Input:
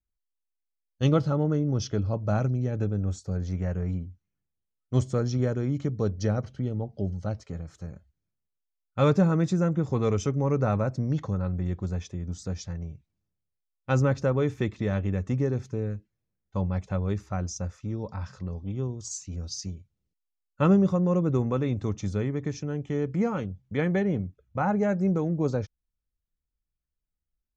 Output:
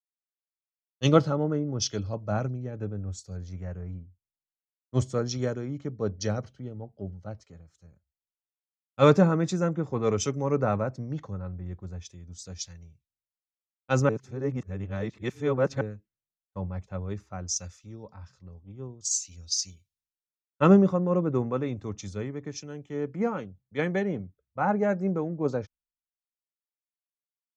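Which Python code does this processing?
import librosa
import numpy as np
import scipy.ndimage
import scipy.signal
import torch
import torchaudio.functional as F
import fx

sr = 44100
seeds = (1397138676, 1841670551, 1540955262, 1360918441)

y = fx.edit(x, sr, fx.reverse_span(start_s=14.09, length_s=1.72), tone=tone)
y = fx.low_shelf(y, sr, hz=160.0, db=-8.5)
y = fx.band_widen(y, sr, depth_pct=100)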